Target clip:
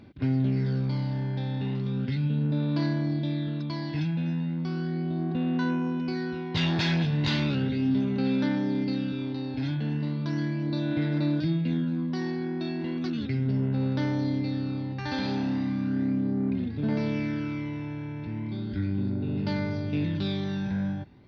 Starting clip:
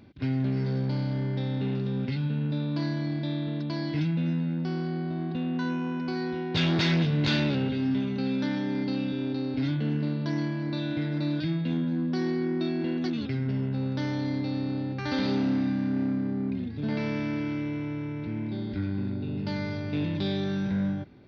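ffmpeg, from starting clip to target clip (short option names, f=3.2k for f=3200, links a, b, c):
-af "aphaser=in_gain=1:out_gain=1:delay=1.2:decay=0.38:speed=0.36:type=sinusoidal,volume=-1.5dB"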